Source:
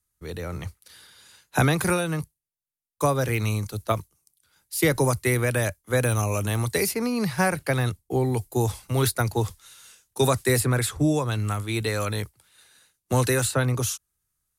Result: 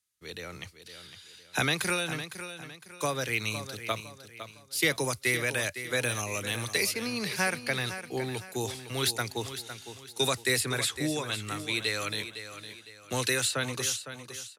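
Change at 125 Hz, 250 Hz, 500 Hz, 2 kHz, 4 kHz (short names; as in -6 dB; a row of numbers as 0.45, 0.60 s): -13.5, -9.5, -8.0, -0.5, +3.5 dB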